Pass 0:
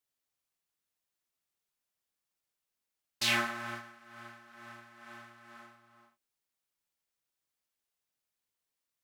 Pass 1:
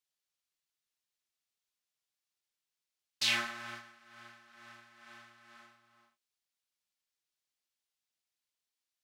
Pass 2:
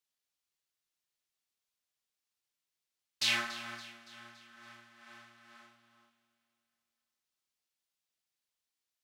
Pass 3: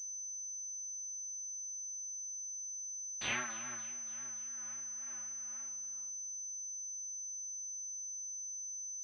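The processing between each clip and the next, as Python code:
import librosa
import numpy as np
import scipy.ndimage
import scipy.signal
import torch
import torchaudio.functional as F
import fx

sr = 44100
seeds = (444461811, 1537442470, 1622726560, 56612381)

y1 = fx.peak_eq(x, sr, hz=4200.0, db=9.0, octaves=2.5)
y1 = y1 * 10.0 ** (-8.0 / 20.0)
y2 = fx.echo_feedback(y1, sr, ms=283, feedback_pct=54, wet_db=-16.0)
y3 = fx.vibrato(y2, sr, rate_hz=3.6, depth_cents=98.0)
y3 = fx.pwm(y3, sr, carrier_hz=6100.0)
y3 = y3 * 10.0 ** (-3.0 / 20.0)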